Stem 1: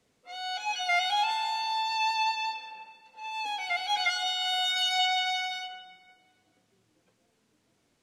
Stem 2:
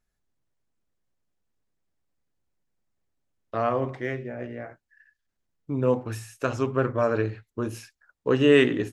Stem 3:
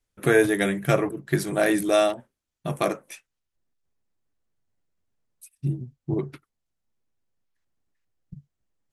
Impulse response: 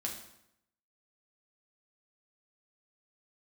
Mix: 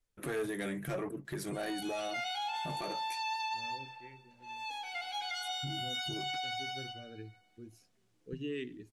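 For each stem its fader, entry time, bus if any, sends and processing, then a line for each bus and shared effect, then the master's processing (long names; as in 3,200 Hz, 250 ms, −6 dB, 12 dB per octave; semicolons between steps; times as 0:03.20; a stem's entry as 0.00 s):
−11.0 dB, 1.25 s, no bus, send −5 dB, high-shelf EQ 10,000 Hz +4.5 dB
−17.0 dB, 0.00 s, bus A, no send, spectral dynamics exaggerated over time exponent 1.5; Chebyshev band-stop filter 380–2,200 Hz, order 2
−0.5 dB, 0.00 s, bus A, no send, flanger 0.67 Hz, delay 1.4 ms, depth 5.7 ms, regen +69%
bus A: 0.0 dB, soft clipping −20 dBFS, distortion −13 dB; downward compressor 6 to 1, threshold −32 dBFS, peak gain reduction 9 dB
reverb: on, RT60 0.80 s, pre-delay 5 ms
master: brickwall limiter −29.5 dBFS, peak gain reduction 8 dB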